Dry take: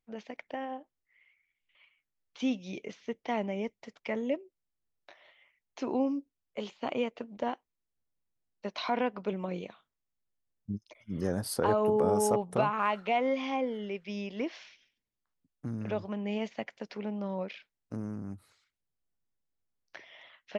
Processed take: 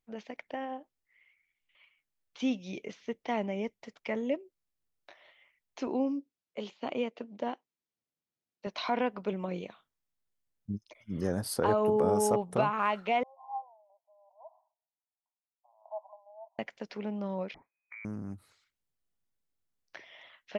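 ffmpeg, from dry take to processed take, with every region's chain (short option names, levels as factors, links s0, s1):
-filter_complex "[0:a]asettb=1/sr,asplit=3[s0][s1][s2];[s0]atrim=end=5.874[s3];[s1]atrim=start=5.87:end=8.67,asetpts=PTS-STARTPTS,afade=t=in:d=0.004:c=qsin,afade=t=out:st=2.796:d=0.004:c=qsin,highpass=150,lowpass=6400,equalizer=f=1300:w=0.62:g=-3.5[s4];[s2]atrim=start=8.666[s5];[s3][s4]acrossfade=d=0.004:c1=hsin:c2=qsin[s6];[s6][s5]acrossfade=d=0.004:c1=qsin:c2=hsin,asettb=1/sr,asplit=3[s7][s8][s9];[s7]atrim=end=13.234[s10];[s8]atrim=start=13.23:end=16.59,asetpts=PTS-STARTPTS,afade=t=in:d=0.004:c=qsin,afade=t=out:st=3.356:d=0.004:c=qsin,acrossover=split=490[s11][s12];[s11]aeval=exprs='val(0)*(1-0.7/2+0.7/2*cos(2*PI*1.3*n/s))':c=same[s13];[s12]aeval=exprs='val(0)*(1-0.7/2-0.7/2*cos(2*PI*1.3*n/s))':c=same[s14];[s13][s14]amix=inputs=2:normalize=0,asuperpass=centerf=800:order=12:qfactor=2[s15];[s9]atrim=start=16.586[s16];[s10][s15]acrossfade=d=0.004:c1=hsin:c2=qsin[s17];[s17][s16]acrossfade=d=0.004:c1=qsin:c2=hsin,asettb=1/sr,asplit=3[s18][s19][s20];[s18]atrim=end=17.544[s21];[s19]atrim=start=17.54:end=18.05,asetpts=PTS-STARTPTS,afade=t=in:d=0.004:c=qsin,afade=t=out:st=0.506:d=0.004:c=qsin,lowpass=f=2100:t=q:w=0.5098,lowpass=f=2100:t=q:w=0.6013,lowpass=f=2100:t=q:w=0.9,lowpass=f=2100:t=q:w=2.563,afreqshift=-2500,acompressor=threshold=0.00562:ratio=4:attack=3.2:release=140:knee=1:detection=peak[s22];[s20]atrim=start=18.046[s23];[s21][s22]acrossfade=d=0.004:c1=hsin:c2=qsin[s24];[s24][s23]acrossfade=d=0.004:c1=qsin:c2=hsin"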